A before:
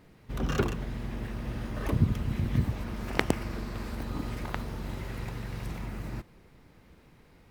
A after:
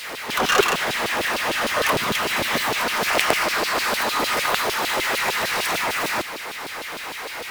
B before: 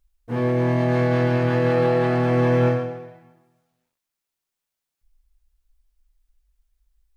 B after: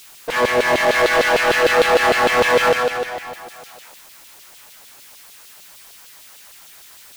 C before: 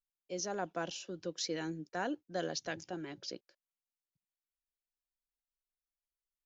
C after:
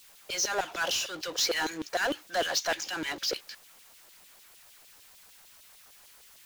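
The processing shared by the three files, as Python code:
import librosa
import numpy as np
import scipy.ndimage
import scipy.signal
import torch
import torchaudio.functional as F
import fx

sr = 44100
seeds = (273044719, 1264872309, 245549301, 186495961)

y = fx.filter_lfo_highpass(x, sr, shape='saw_down', hz=6.6, low_hz=450.0, high_hz=3700.0, q=1.4)
y = fx.power_curve(y, sr, exponent=0.5)
y = y * 10.0 ** (4.0 / 20.0)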